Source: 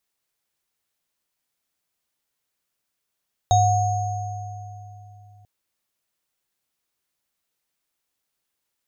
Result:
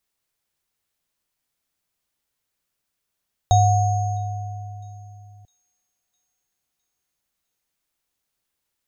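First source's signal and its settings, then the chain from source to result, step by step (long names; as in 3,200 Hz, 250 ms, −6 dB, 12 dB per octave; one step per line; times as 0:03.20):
inharmonic partials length 1.94 s, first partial 102 Hz, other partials 728/3,770/6,500 Hz, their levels 3/−10/−10 dB, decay 3.69 s, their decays 2.72/0.30/2.08 s, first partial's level −17 dB
low-shelf EQ 120 Hz +7 dB
delay with a high-pass on its return 657 ms, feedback 49%, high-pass 4,200 Hz, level −23 dB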